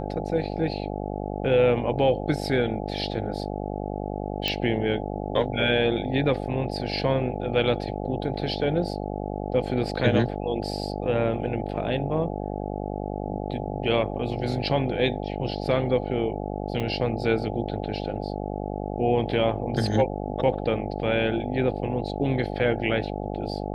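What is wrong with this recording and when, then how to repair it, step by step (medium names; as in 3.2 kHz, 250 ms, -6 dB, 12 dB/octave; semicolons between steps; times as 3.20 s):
buzz 50 Hz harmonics 17 -31 dBFS
4.48 s: pop -11 dBFS
16.80 s: dropout 2.7 ms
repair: de-click; de-hum 50 Hz, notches 17; interpolate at 16.80 s, 2.7 ms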